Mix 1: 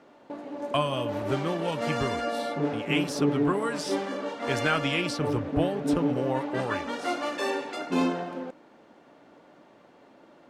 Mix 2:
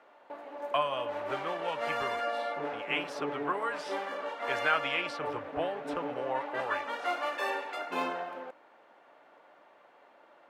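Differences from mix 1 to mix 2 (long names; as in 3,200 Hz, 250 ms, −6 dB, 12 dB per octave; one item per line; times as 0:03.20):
background: remove high-frequency loss of the air 62 metres
master: add three-way crossover with the lows and the highs turned down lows −20 dB, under 520 Hz, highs −16 dB, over 3,100 Hz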